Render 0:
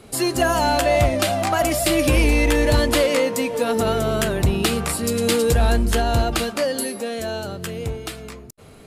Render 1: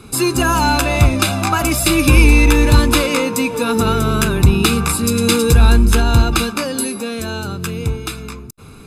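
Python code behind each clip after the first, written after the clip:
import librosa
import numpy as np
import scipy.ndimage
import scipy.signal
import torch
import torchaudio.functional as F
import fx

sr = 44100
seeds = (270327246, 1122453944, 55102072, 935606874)

y = x + 0.7 * np.pad(x, (int(0.8 * sr / 1000.0), 0))[:len(x)]
y = F.gain(torch.from_numpy(y), 4.0).numpy()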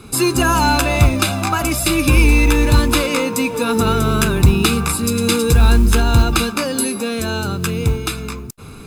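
y = fx.rider(x, sr, range_db=4, speed_s=2.0)
y = fx.mod_noise(y, sr, seeds[0], snr_db=31)
y = F.gain(torch.from_numpy(y), -1.0).numpy()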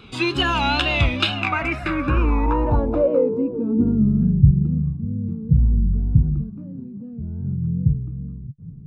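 y = fx.filter_sweep_lowpass(x, sr, from_hz=3200.0, to_hz=150.0, start_s=1.24, end_s=4.43, q=4.5)
y = fx.wow_flutter(y, sr, seeds[1], rate_hz=2.1, depth_cents=90.0)
y = F.gain(torch.from_numpy(y), -7.0).numpy()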